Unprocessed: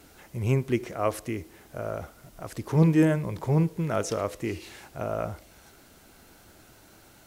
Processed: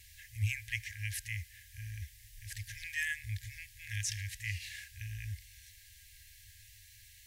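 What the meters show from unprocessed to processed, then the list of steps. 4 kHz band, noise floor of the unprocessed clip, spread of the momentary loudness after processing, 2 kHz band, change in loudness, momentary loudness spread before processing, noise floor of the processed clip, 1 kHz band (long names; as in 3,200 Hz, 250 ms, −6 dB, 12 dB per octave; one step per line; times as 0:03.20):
+0.5 dB, −55 dBFS, 19 LU, +1.5 dB, −12.5 dB, 18 LU, −58 dBFS, below −40 dB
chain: brick-wall band-stop 110–1,600 Hz
dynamic equaliser 1,200 Hz, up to +6 dB, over −57 dBFS, Q 1.1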